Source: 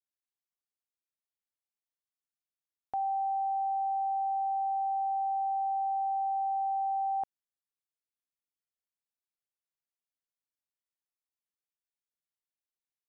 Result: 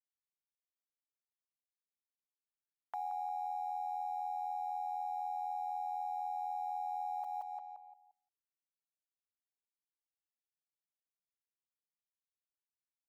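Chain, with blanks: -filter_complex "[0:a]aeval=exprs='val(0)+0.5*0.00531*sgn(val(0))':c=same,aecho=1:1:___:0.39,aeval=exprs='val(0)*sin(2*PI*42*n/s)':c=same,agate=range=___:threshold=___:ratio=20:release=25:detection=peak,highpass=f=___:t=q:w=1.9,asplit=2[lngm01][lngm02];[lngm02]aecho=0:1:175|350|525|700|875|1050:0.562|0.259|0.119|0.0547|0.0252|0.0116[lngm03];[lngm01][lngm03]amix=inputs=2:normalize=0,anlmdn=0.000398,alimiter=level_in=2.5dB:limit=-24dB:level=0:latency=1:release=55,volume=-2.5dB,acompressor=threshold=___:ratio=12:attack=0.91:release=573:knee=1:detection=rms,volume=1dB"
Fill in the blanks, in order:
5.8, -30dB, -51dB, 830, -35dB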